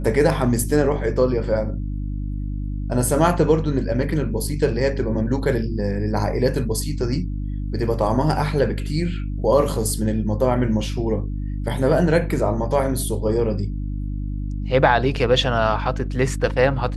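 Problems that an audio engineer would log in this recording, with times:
mains hum 50 Hz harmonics 6 −26 dBFS

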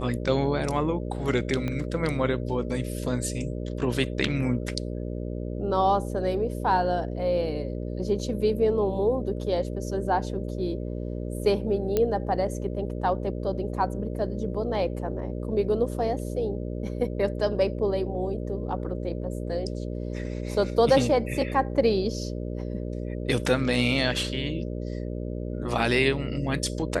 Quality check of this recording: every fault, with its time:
mains buzz 60 Hz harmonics 10 −32 dBFS
0:01.68: click −18 dBFS
0:11.97: click −11 dBFS

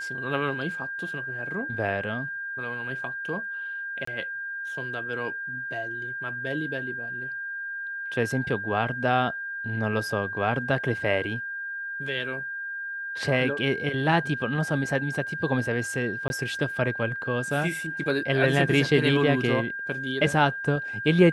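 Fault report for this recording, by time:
whistle 1,600 Hz −31 dBFS
0:04.05–0:04.07: drop-out 24 ms
0:16.28–0:16.30: drop-out 21 ms

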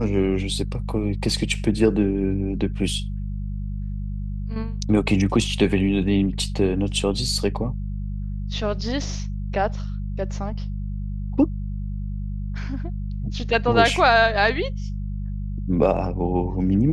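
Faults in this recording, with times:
mains hum 50 Hz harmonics 4 −28 dBFS

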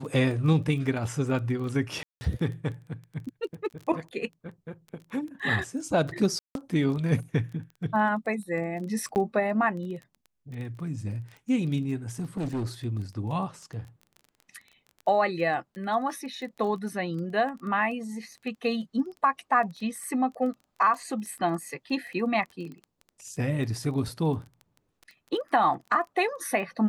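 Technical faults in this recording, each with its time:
surface crackle 15 per second −36 dBFS
0:02.03–0:02.21: drop-out 180 ms
0:06.39–0:06.55: drop-out 162 ms
0:09.15–0:09.16: drop-out 9.3 ms
0:12.19–0:12.66: clipping −26.5 dBFS

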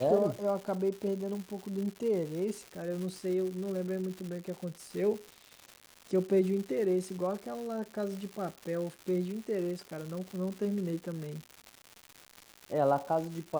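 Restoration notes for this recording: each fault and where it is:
surface crackle 290 per second −38 dBFS

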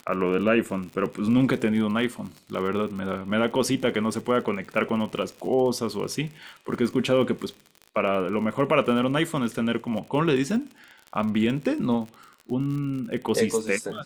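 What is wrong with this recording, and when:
surface crackle 60 per second −33 dBFS

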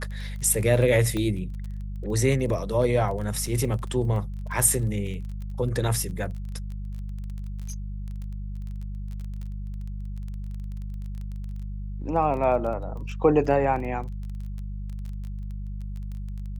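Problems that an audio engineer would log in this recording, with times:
surface crackle 18 per second −34 dBFS
mains hum 50 Hz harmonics 4 −33 dBFS
0:01.17: click −17 dBFS
0:03.46: drop-out 3.8 ms

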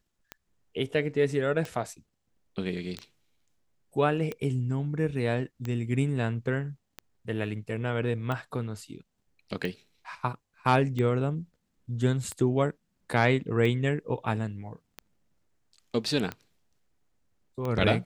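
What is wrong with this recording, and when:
scratch tick 45 rpm −20 dBFS

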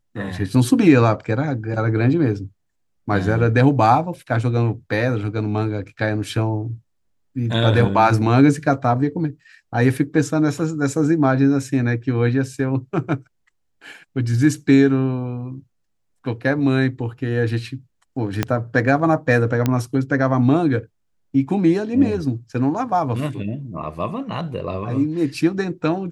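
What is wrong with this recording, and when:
0:18.43: click −5 dBFS
0:19.66: click −6 dBFS

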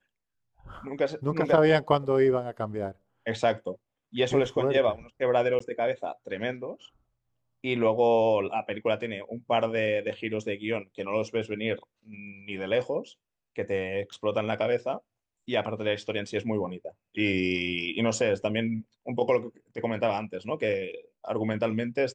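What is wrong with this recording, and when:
0:05.59–0:05.60: drop-out
0:14.13: drop-out 4 ms

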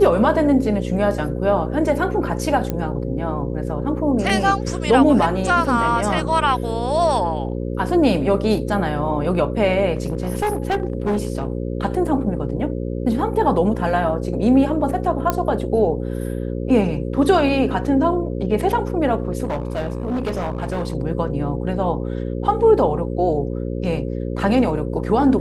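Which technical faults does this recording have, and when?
mains buzz 60 Hz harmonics 9 −25 dBFS
0:02.70: click −10 dBFS
0:09.93–0:11.47: clipping −16 dBFS
0:15.30: click −5 dBFS
0:19.43–0:20.95: clipping −19 dBFS

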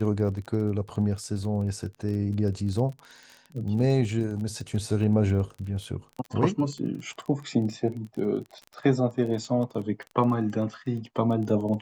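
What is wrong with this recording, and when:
surface crackle 22 per second −34 dBFS

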